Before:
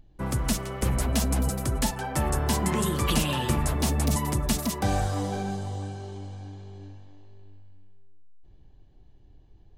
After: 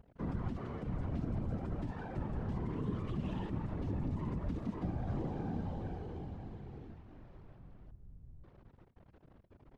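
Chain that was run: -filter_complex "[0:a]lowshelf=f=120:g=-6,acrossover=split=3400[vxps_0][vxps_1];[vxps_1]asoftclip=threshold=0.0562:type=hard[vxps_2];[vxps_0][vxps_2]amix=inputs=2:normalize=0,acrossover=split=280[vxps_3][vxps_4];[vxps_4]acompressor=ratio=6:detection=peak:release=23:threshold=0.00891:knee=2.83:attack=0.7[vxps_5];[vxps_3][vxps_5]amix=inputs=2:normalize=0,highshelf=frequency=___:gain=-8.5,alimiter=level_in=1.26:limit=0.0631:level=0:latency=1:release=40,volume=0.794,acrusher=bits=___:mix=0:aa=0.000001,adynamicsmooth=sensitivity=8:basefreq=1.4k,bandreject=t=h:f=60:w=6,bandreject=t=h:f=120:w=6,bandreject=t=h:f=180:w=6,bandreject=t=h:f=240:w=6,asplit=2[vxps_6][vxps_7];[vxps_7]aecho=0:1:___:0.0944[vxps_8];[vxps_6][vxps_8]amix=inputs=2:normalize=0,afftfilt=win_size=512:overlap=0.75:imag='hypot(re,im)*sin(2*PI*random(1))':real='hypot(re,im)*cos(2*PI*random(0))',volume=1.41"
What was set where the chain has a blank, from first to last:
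7.1k, 8, 225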